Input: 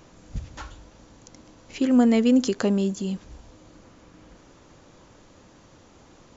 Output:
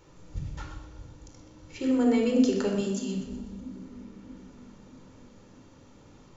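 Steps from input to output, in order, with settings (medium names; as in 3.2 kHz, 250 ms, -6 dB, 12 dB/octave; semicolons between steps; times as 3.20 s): 2.75–3.15 s: tilt EQ +2.5 dB/octave; on a send: two-band feedback delay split 310 Hz, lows 634 ms, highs 124 ms, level -13.5 dB; on the sum: simulated room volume 2700 m³, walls furnished, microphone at 4.4 m; trim -8.5 dB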